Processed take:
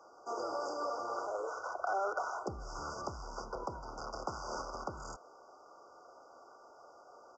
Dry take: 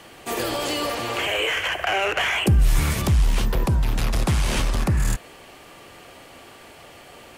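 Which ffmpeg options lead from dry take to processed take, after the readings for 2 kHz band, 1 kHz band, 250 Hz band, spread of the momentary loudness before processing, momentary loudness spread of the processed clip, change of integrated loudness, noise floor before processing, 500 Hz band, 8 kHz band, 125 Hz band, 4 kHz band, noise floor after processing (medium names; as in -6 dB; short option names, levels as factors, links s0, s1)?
-20.5 dB, -8.5 dB, -21.0 dB, 6 LU, 21 LU, -17.0 dB, -46 dBFS, -10.5 dB, -19.5 dB, -30.5 dB, -26.0 dB, -59 dBFS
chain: -filter_complex "[0:a]afftfilt=real='re*(1-between(b*sr/4096,1500,4700))':imag='im*(1-between(b*sr/4096,1500,4700))':win_size=4096:overlap=0.75,acrossover=split=400 5500:gain=0.0708 1 0.0891[s0][s1][s2];[s0][s1][s2]amix=inputs=3:normalize=0,aresample=16000,aresample=44100,volume=0.398"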